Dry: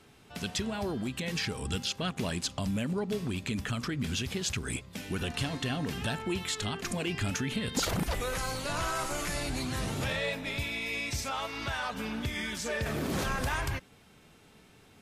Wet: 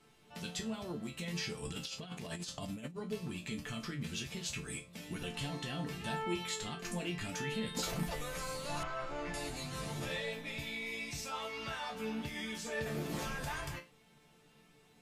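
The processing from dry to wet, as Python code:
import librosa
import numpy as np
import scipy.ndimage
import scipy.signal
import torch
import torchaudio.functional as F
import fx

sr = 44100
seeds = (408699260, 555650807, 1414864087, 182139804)

y = fx.peak_eq(x, sr, hz=1500.0, db=-3.0, octaves=0.33)
y = fx.resonator_bank(y, sr, root=50, chord='minor', decay_s=0.24)
y = fx.over_compress(y, sr, threshold_db=-49.0, ratio=-0.5, at=(1.63, 2.97))
y = fx.lowpass(y, sr, hz=2600.0, slope=12, at=(8.83, 9.34))
y = F.gain(torch.from_numpy(y), 7.0).numpy()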